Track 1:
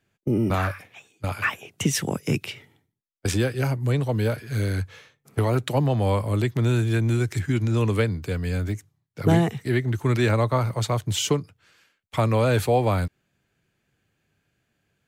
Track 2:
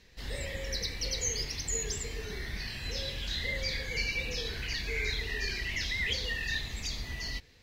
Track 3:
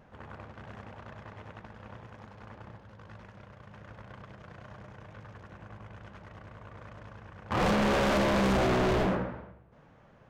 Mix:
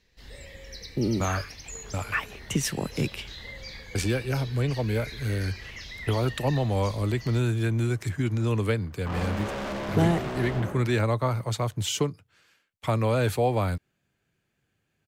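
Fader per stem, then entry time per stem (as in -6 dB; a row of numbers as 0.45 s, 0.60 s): -3.5 dB, -7.5 dB, -6.5 dB; 0.70 s, 0.00 s, 1.55 s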